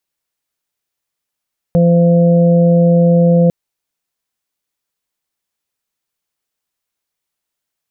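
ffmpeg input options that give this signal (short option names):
-f lavfi -i "aevalsrc='0.398*sin(2*PI*171*t)+0.0422*sin(2*PI*342*t)+0.251*sin(2*PI*513*t)+0.0531*sin(2*PI*684*t)':d=1.75:s=44100"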